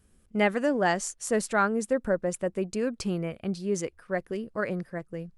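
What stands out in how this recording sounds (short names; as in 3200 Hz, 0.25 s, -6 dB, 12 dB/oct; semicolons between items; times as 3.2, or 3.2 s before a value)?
noise floor -64 dBFS; spectral tilt -5.0 dB/oct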